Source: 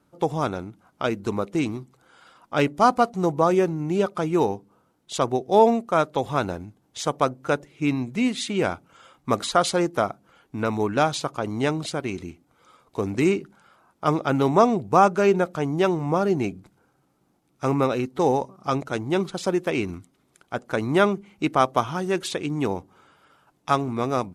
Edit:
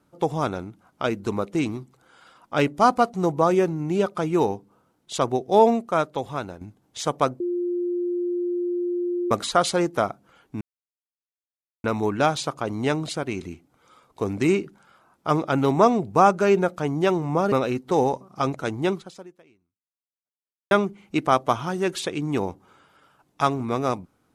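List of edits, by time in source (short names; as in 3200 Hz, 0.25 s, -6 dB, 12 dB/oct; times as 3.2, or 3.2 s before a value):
5.77–6.61 fade out, to -10 dB
7.4–9.31 bleep 352 Hz -22.5 dBFS
10.61 insert silence 1.23 s
16.29–17.8 cut
19.16–20.99 fade out exponential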